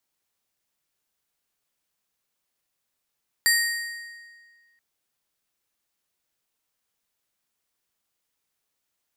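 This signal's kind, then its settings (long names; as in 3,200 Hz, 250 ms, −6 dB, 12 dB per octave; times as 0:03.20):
struck metal plate, length 1.33 s, lowest mode 1,870 Hz, modes 5, decay 1.75 s, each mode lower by 2.5 dB, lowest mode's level −18 dB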